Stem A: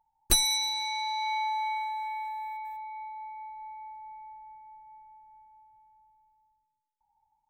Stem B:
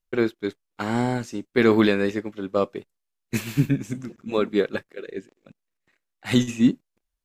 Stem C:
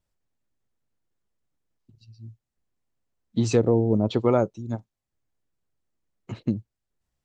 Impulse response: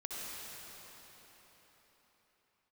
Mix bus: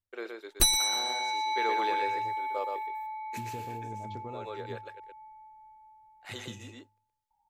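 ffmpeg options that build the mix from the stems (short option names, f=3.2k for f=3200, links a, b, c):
-filter_complex "[0:a]adelay=300,volume=0dB,asplit=2[a][b];[b]volume=-16dB[c];[1:a]highpass=f=430:w=0.5412,highpass=f=430:w=1.3066,volume=-12.5dB,asplit=3[d][e][f];[d]atrim=end=5,asetpts=PTS-STARTPTS,afade=t=out:st=4.996:d=0.004:c=hsin[g];[e]atrim=start=5:end=6.21,asetpts=PTS-STARTPTS,volume=0[h];[f]atrim=start=6.21,asetpts=PTS-STARTPTS,afade=t=in:d=0.004:c=hsin[i];[g][h][i]concat=n=3:v=0:a=1,asplit=2[j][k];[k]volume=-4dB[l];[2:a]equalizer=f=100:w=4.5:g=12.5,bandreject=f=51.93:t=h:w=4,bandreject=f=103.86:t=h:w=4,bandreject=f=155.79:t=h:w=4,bandreject=f=207.72:t=h:w=4,bandreject=f=259.65:t=h:w=4,bandreject=f=311.58:t=h:w=4,bandreject=f=363.51:t=h:w=4,bandreject=f=415.44:t=h:w=4,bandreject=f=467.37:t=h:w=4,acompressor=threshold=-22dB:ratio=6,volume=-16.5dB,asplit=2[m][n];[n]apad=whole_len=319348[o];[j][o]sidechaincompress=threshold=-44dB:ratio=8:attack=42:release=1000[p];[c][l]amix=inputs=2:normalize=0,aecho=0:1:121:1[q];[a][p][m][q]amix=inputs=4:normalize=0"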